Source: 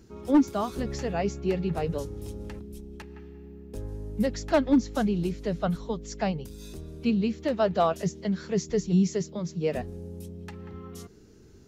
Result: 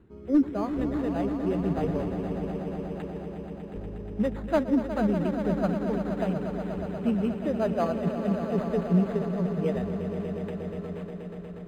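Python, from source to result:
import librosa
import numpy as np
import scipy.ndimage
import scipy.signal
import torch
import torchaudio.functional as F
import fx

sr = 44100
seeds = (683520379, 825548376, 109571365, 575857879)

y = fx.rotary_switch(x, sr, hz=0.9, then_hz=7.5, switch_at_s=4.16)
y = fx.echo_swell(y, sr, ms=120, loudest=5, wet_db=-11)
y = np.interp(np.arange(len(y)), np.arange(len(y))[::8], y[::8])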